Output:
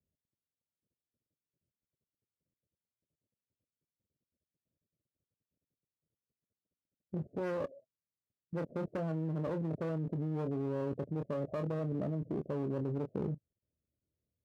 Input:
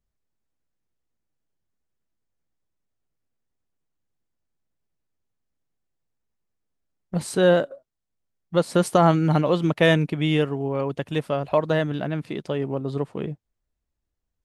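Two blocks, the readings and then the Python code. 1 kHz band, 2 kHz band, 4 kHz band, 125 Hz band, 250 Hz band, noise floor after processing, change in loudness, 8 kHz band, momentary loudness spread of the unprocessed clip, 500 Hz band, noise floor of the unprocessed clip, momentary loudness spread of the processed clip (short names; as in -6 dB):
-20.0 dB, -23.5 dB, under -30 dB, -12.0 dB, -12.5 dB, under -85 dBFS, -14.5 dB, under -30 dB, 12 LU, -15.5 dB, -81 dBFS, 5 LU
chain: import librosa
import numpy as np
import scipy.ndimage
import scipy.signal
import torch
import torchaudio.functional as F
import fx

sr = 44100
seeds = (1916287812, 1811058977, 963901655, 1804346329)

y = scipy.signal.sosfilt(scipy.signal.butter(16, 650.0, 'lowpass', fs=sr, output='sos'), x)
y = fx.clip_asym(y, sr, top_db=-31.5, bottom_db=-14.0)
y = scipy.signal.sosfilt(scipy.signal.butter(4, 83.0, 'highpass', fs=sr, output='sos'), y)
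y = fx.low_shelf(y, sr, hz=120.0, db=5.0)
y = fx.doubler(y, sr, ms=25.0, db=-10)
y = fx.level_steps(y, sr, step_db=18)
y = y * 10.0 ** (1.0 / 20.0)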